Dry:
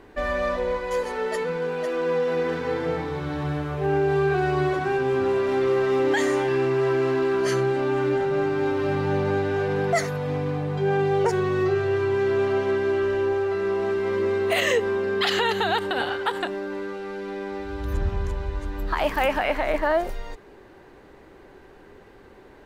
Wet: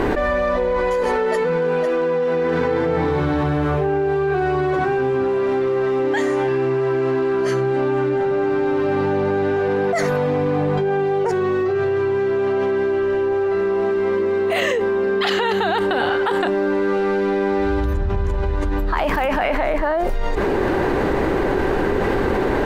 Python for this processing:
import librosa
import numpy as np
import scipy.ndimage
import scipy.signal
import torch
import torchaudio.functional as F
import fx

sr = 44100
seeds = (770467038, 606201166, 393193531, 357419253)

y = fx.high_shelf(x, sr, hz=2500.0, db=-8.0)
y = fx.hum_notches(y, sr, base_hz=50, count=3)
y = fx.env_flatten(y, sr, amount_pct=100)